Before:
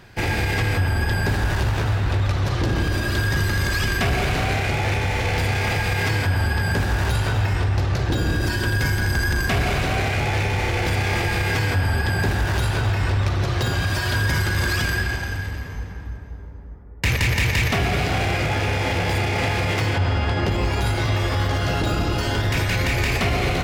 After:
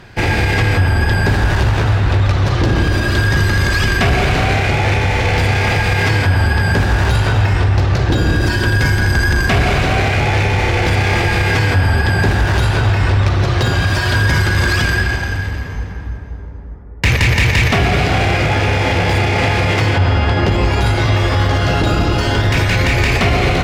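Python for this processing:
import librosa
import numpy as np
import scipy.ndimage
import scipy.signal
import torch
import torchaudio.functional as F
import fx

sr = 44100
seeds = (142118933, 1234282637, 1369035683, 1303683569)

y = fx.high_shelf(x, sr, hz=10000.0, db=-12.0)
y = y * 10.0 ** (7.5 / 20.0)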